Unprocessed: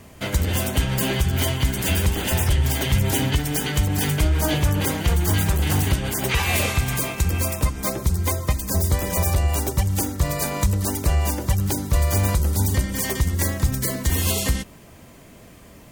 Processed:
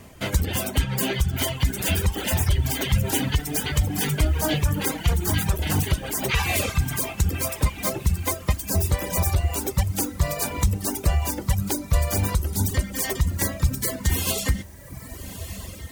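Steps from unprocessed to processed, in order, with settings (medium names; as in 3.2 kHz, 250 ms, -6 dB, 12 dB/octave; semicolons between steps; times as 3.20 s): echo that smears into a reverb 1264 ms, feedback 48%, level -11.5 dB; reverb removal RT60 1.7 s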